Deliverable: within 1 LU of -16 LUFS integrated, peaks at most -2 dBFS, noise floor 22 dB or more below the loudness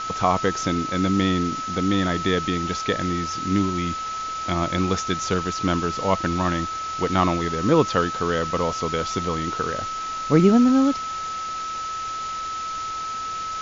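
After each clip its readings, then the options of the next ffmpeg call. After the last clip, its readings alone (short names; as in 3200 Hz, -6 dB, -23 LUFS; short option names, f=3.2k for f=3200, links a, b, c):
steady tone 1300 Hz; tone level -27 dBFS; noise floor -30 dBFS; noise floor target -45 dBFS; loudness -23.0 LUFS; peak -4.5 dBFS; loudness target -16.0 LUFS
-> -af "bandreject=f=1.3k:w=30"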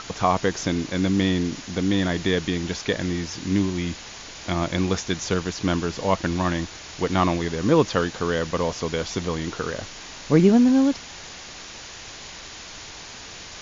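steady tone none; noise floor -40 dBFS; noise floor target -46 dBFS
-> -af "afftdn=nr=6:nf=-40"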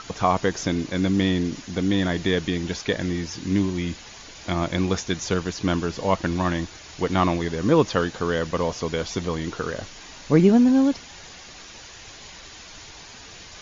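noise floor -43 dBFS; noise floor target -46 dBFS
-> -af "afftdn=nr=6:nf=-43"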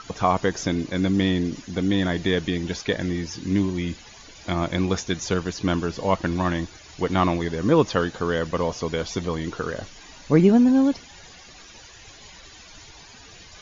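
noise floor -46 dBFS; loudness -23.5 LUFS; peak -5.5 dBFS; loudness target -16.0 LUFS
-> -af "volume=7.5dB,alimiter=limit=-2dB:level=0:latency=1"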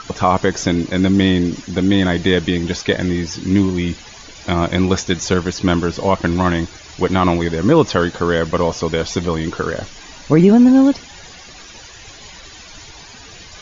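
loudness -16.5 LUFS; peak -2.0 dBFS; noise floor -39 dBFS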